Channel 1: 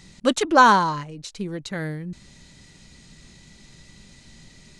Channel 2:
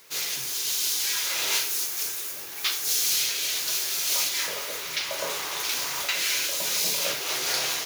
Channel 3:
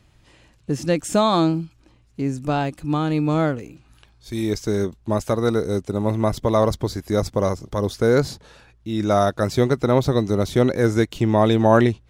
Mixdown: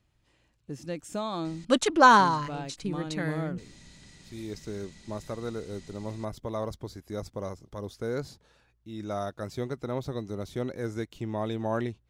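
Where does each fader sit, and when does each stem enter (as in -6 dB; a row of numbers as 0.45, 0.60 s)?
-3.0 dB, off, -15.0 dB; 1.45 s, off, 0.00 s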